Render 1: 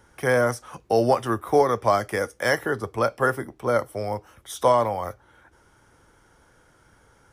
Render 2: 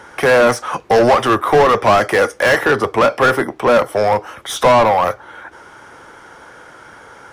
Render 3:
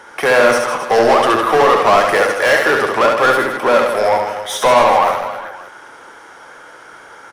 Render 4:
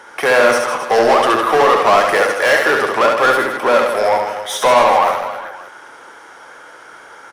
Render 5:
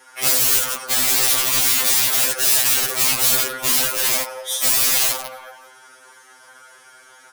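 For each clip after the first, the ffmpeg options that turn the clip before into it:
ffmpeg -i in.wav -filter_complex "[0:a]asplit=2[link_01][link_02];[link_02]highpass=frequency=720:poles=1,volume=25dB,asoftclip=type=tanh:threshold=-7.5dB[link_03];[link_01][link_03]amix=inputs=2:normalize=0,lowpass=frequency=2100:poles=1,volume=-6dB,volume=4dB" out.wav
ffmpeg -i in.wav -filter_complex "[0:a]equalizer=frequency=66:width=0.33:gain=-12,asplit=2[link_01][link_02];[link_02]aecho=0:1:70|157.5|266.9|403.6|574.5:0.631|0.398|0.251|0.158|0.1[link_03];[link_01][link_03]amix=inputs=2:normalize=0" out.wav
ffmpeg -i in.wav -af "lowshelf=frequency=180:gain=-6" out.wav
ffmpeg -i in.wav -af "aeval=exprs='(mod(3.76*val(0)+1,2)-1)/3.76':channel_layout=same,crystalizer=i=4:c=0,afftfilt=real='re*2.45*eq(mod(b,6),0)':imag='im*2.45*eq(mod(b,6),0)':win_size=2048:overlap=0.75,volume=-9.5dB" out.wav

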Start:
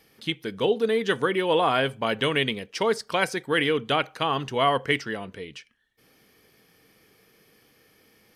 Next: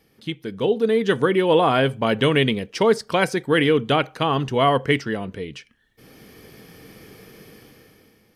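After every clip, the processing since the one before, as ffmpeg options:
ffmpeg -i in.wav -af "lowshelf=frequency=500:gain=8.5,dynaudnorm=framelen=240:gausssize=7:maxgain=15.5dB,volume=-4.5dB" out.wav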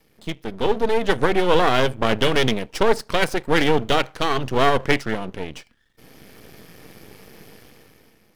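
ffmpeg -i in.wav -af "aeval=exprs='max(val(0),0)':channel_layout=same,volume=4dB" out.wav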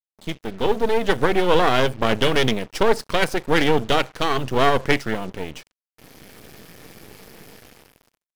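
ffmpeg -i in.wav -af "acrusher=bits=6:mix=0:aa=0.5" out.wav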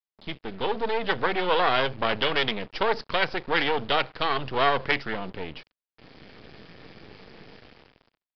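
ffmpeg -i in.wav -filter_complex "[0:a]acrossover=split=470[link_01][link_02];[link_01]asoftclip=type=tanh:threshold=-26dB[link_03];[link_03][link_02]amix=inputs=2:normalize=0,aresample=11025,aresample=44100,volume=-2.5dB" out.wav

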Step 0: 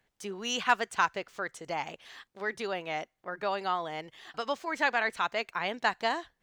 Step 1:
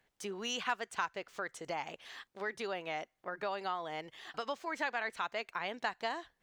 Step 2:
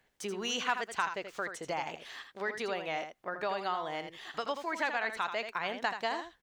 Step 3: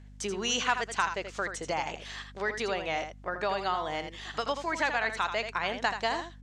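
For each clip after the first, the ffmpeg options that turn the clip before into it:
ffmpeg -i in.wav -af "bass=frequency=250:gain=-3,treble=frequency=4000:gain=-1,acompressor=threshold=-38dB:ratio=2" out.wav
ffmpeg -i in.wav -af "aecho=1:1:81:0.376,volume=3dB" out.wav
ffmpeg -i in.wav -af "lowpass=frequency=7400:width_type=q:width=1.6,aeval=exprs='val(0)+0.00251*(sin(2*PI*50*n/s)+sin(2*PI*2*50*n/s)/2+sin(2*PI*3*50*n/s)/3+sin(2*PI*4*50*n/s)/4+sin(2*PI*5*50*n/s)/5)':channel_layout=same,volume=3.5dB" out.wav

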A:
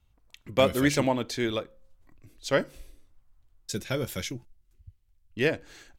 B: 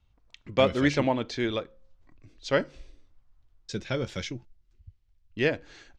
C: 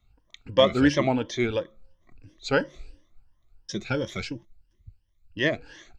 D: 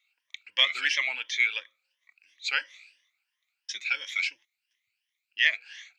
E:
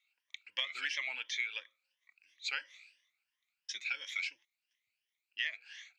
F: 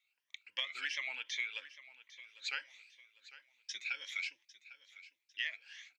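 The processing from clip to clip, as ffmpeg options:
ffmpeg -i in.wav -filter_complex "[0:a]lowpass=frequency=6100:width=0.5412,lowpass=frequency=6100:width=1.3066,acrossover=split=3800[link_01][link_02];[link_02]alimiter=level_in=8dB:limit=-24dB:level=0:latency=1:release=437,volume=-8dB[link_03];[link_01][link_03]amix=inputs=2:normalize=0" out.wav
ffmpeg -i in.wav -af "afftfilt=real='re*pow(10,15/40*sin(2*PI*(1.2*log(max(b,1)*sr/1024/100)/log(2)-(2.9)*(pts-256)/sr)))':imag='im*pow(10,15/40*sin(2*PI*(1.2*log(max(b,1)*sr/1024/100)/log(2)-(2.9)*(pts-256)/sr)))':win_size=1024:overlap=0.75" out.wav
ffmpeg -i in.wav -af "highpass=frequency=2300:width_type=q:width=3.7" out.wav
ffmpeg -i in.wav -af "acompressor=threshold=-27dB:ratio=6,volume=-5.5dB" out.wav
ffmpeg -i in.wav -af "aecho=1:1:801|1602|2403:0.141|0.0565|0.0226,volume=-2dB" out.wav

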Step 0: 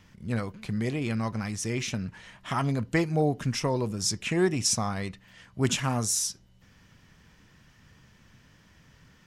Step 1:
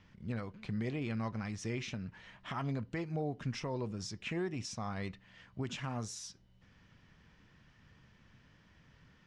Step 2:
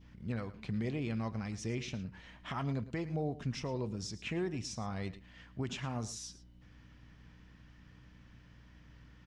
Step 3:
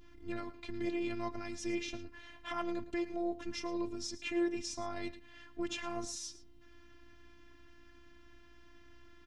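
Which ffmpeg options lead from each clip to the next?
ffmpeg -i in.wav -af "alimiter=limit=-21dB:level=0:latency=1:release=361,lowpass=4400,volume=-5.5dB" out.wav
ffmpeg -i in.wav -af "adynamicequalizer=threshold=0.00126:dfrequency=1500:dqfactor=0.92:tfrequency=1500:tqfactor=0.92:attack=5:release=100:ratio=0.375:range=2.5:mode=cutabove:tftype=bell,aeval=exprs='val(0)+0.00126*(sin(2*PI*60*n/s)+sin(2*PI*2*60*n/s)/2+sin(2*PI*3*60*n/s)/3+sin(2*PI*4*60*n/s)/4+sin(2*PI*5*60*n/s)/5)':channel_layout=same,aecho=1:1:110:0.158,volume=1dB" out.wav
ffmpeg -i in.wav -af "afftfilt=real='hypot(re,im)*cos(PI*b)':imag='0':win_size=512:overlap=0.75,volume=5dB" out.wav

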